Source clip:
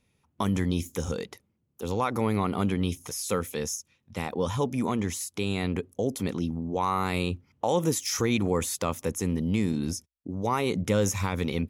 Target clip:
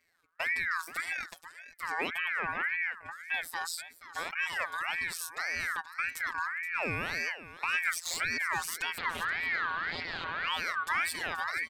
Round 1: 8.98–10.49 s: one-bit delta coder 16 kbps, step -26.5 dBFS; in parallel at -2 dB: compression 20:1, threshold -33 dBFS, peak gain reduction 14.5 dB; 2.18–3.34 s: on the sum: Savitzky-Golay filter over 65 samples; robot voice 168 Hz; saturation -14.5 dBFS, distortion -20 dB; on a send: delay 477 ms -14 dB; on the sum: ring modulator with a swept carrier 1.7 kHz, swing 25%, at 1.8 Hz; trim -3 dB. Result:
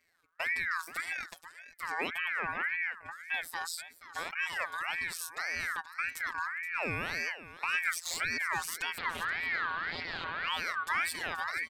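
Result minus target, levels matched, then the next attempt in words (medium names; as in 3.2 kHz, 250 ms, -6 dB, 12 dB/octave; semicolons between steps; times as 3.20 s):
compression: peak gain reduction +6 dB
8.98–10.49 s: one-bit delta coder 16 kbps, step -26.5 dBFS; in parallel at -2 dB: compression 20:1, threshold -26.5 dBFS, peak gain reduction 8 dB; 2.18–3.34 s: on the sum: Savitzky-Golay filter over 65 samples; robot voice 168 Hz; saturation -14.5 dBFS, distortion -18 dB; on a send: delay 477 ms -14 dB; on the sum: ring modulator with a swept carrier 1.7 kHz, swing 25%, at 1.8 Hz; trim -3 dB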